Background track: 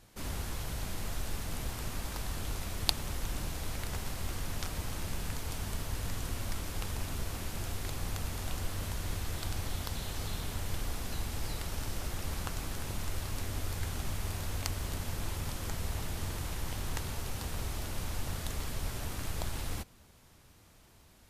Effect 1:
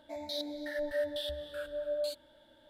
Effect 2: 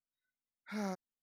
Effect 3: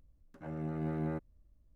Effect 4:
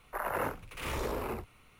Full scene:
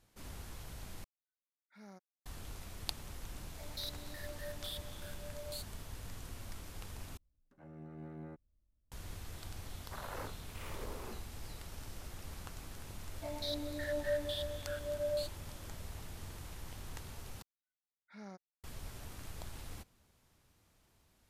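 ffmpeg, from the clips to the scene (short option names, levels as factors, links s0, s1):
-filter_complex "[2:a]asplit=2[s0][s1];[1:a]asplit=2[s2][s3];[0:a]volume=0.299[s4];[s2]crystalizer=i=6.5:c=0[s5];[s1]lowpass=6400[s6];[s4]asplit=4[s7][s8][s9][s10];[s7]atrim=end=1.044[s11];[s0]atrim=end=1.22,asetpts=PTS-STARTPTS,volume=0.158[s12];[s8]atrim=start=2.256:end=7.174[s13];[3:a]atrim=end=1.75,asetpts=PTS-STARTPTS,volume=0.237[s14];[s9]atrim=start=8.916:end=17.424[s15];[s6]atrim=end=1.22,asetpts=PTS-STARTPTS,volume=0.266[s16];[s10]atrim=start=18.636[s17];[s5]atrim=end=2.69,asetpts=PTS-STARTPTS,volume=0.158,afade=t=in:d=0.004:c=hsin,afade=t=out:st=2.686:d=0.004:c=hsin,adelay=3480[s18];[4:a]atrim=end=1.79,asetpts=PTS-STARTPTS,volume=0.251,afade=t=in:d=0.004:c=hsin,afade=t=out:st=1.786:d=0.004:c=hsin,adelay=431298S[s19];[s3]atrim=end=2.69,asetpts=PTS-STARTPTS,volume=0.794,afade=t=in:d=0.004:c=hsin,afade=t=out:st=2.686:d=0.004:c=hsin,adelay=13130[s20];[s11][s12]acrossfade=d=0.004:c1=hsin:c2=hsin[s21];[s21][s13]acrossfade=d=0.004:c1=hsin:c2=hsin[s22];[s22][s14]acrossfade=d=0.004:c1=hsin:c2=hsin[s23];[s23][s15]acrossfade=d=0.004:c1=hsin:c2=hsin[s24];[s24][s16]acrossfade=d=0.004:c1=hsin:c2=hsin[s25];[s25][s17]acrossfade=d=0.004:c1=hsin:c2=hsin[s26];[s26][s18][s19][s20]amix=inputs=4:normalize=0"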